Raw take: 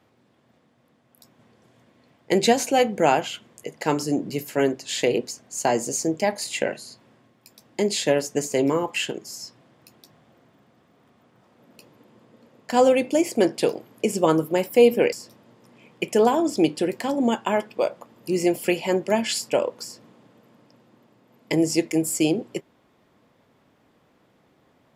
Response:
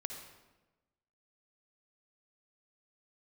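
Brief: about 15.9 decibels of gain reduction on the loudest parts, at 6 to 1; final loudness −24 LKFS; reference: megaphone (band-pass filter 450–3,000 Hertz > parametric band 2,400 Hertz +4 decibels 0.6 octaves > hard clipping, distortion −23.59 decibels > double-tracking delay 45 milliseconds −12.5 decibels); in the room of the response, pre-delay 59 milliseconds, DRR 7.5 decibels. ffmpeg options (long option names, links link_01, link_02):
-filter_complex "[0:a]acompressor=threshold=-28dB:ratio=6,asplit=2[link_01][link_02];[1:a]atrim=start_sample=2205,adelay=59[link_03];[link_02][link_03]afir=irnorm=-1:irlink=0,volume=-6.5dB[link_04];[link_01][link_04]amix=inputs=2:normalize=0,highpass=450,lowpass=3000,equalizer=frequency=2400:width_type=o:width=0.6:gain=4,asoftclip=type=hard:threshold=-23dB,asplit=2[link_05][link_06];[link_06]adelay=45,volume=-12.5dB[link_07];[link_05][link_07]amix=inputs=2:normalize=0,volume=11.5dB"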